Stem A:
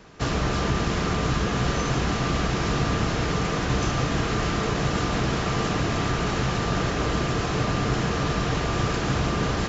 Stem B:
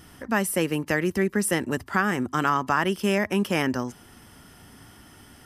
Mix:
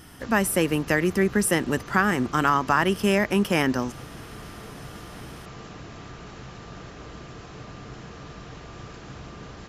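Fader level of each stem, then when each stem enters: -16.5 dB, +2.0 dB; 0.00 s, 0.00 s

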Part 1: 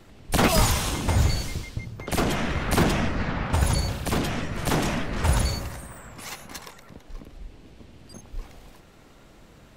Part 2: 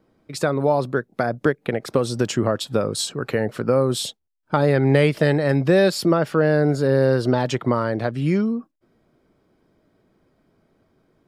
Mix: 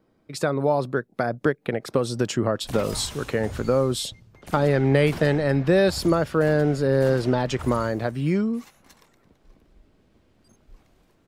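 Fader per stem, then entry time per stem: -15.0 dB, -2.5 dB; 2.35 s, 0.00 s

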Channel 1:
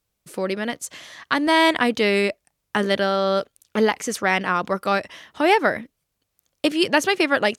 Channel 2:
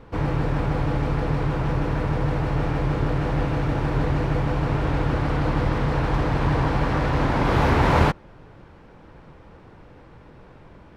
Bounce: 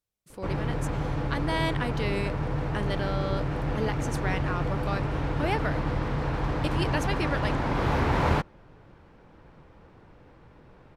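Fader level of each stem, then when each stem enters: -12.5 dB, -6.0 dB; 0.00 s, 0.30 s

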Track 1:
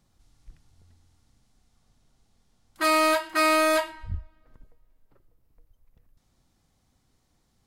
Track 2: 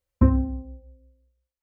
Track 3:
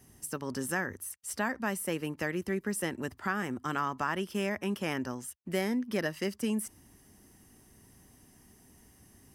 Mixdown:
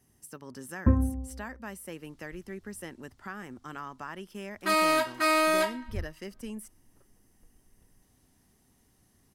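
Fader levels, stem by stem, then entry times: -3.0 dB, -4.5 dB, -8.5 dB; 1.85 s, 0.65 s, 0.00 s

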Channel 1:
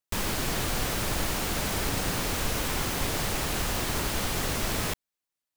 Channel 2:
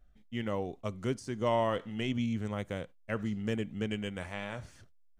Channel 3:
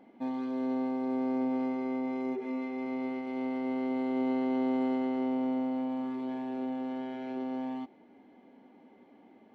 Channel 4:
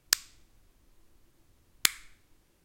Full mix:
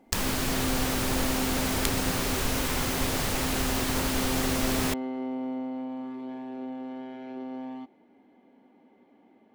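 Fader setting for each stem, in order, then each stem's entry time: +0.5 dB, mute, -2.0 dB, -8.0 dB; 0.00 s, mute, 0.00 s, 0.00 s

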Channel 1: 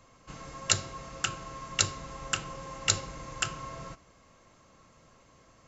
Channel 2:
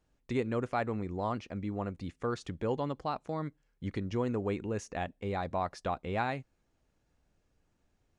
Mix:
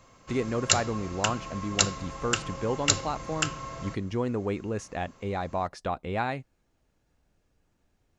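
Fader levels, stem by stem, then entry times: +2.5 dB, +3.0 dB; 0.00 s, 0.00 s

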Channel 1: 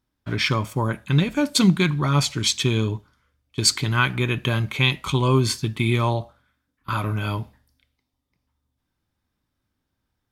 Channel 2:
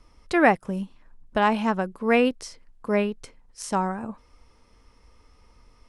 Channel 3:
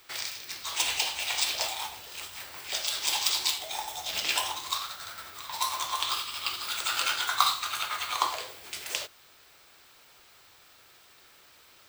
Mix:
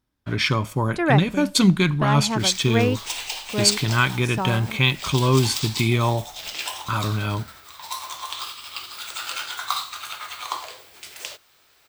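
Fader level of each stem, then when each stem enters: +0.5 dB, -2.5 dB, -2.0 dB; 0.00 s, 0.65 s, 2.30 s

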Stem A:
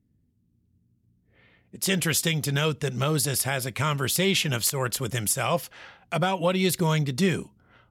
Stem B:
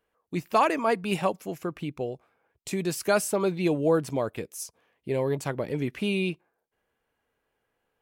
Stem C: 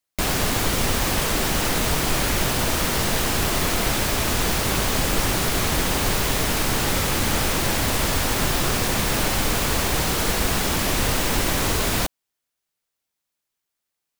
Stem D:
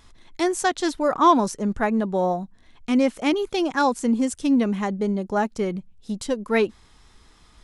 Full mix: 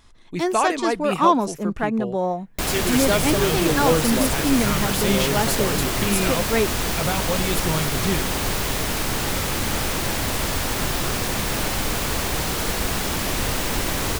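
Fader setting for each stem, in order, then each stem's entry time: -2.5 dB, +1.0 dB, -2.0 dB, -1.0 dB; 0.85 s, 0.00 s, 2.40 s, 0.00 s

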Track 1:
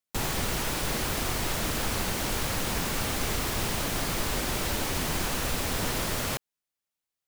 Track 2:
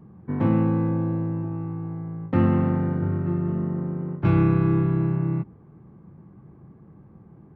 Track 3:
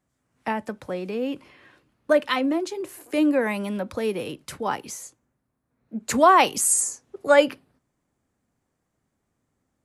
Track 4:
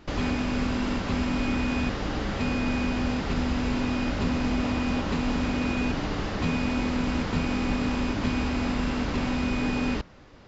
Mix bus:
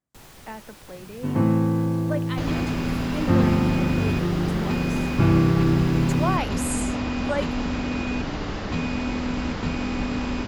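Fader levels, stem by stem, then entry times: -17.5 dB, +0.5 dB, -11.0 dB, 0.0 dB; 0.00 s, 0.95 s, 0.00 s, 2.30 s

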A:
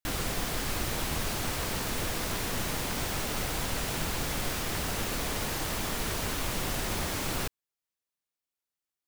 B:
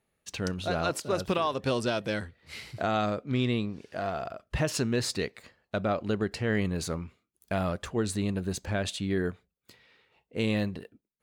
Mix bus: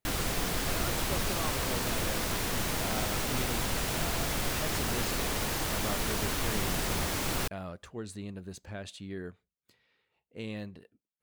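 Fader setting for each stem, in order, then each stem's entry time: +0.5 dB, -11.0 dB; 0.00 s, 0.00 s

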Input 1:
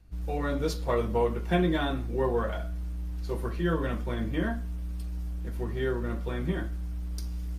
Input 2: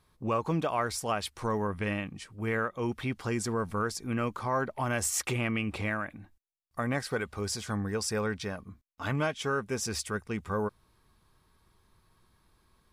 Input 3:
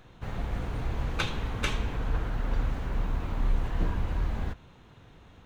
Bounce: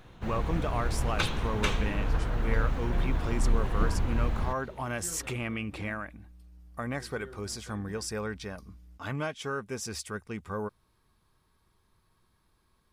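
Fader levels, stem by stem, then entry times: -18.5 dB, -3.5 dB, +1.0 dB; 1.40 s, 0.00 s, 0.00 s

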